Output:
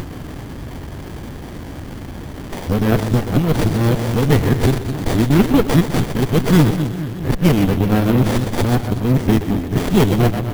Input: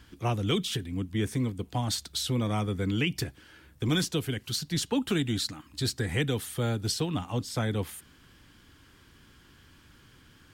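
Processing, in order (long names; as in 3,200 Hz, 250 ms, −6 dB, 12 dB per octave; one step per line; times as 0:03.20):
played backwards from end to start
echo with a time of its own for lows and highs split 340 Hz, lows 211 ms, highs 125 ms, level −8 dB
upward compression, threshold −32 dBFS
bad sample-rate conversion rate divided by 3×, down none, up zero stuff
windowed peak hold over 33 samples
level +7 dB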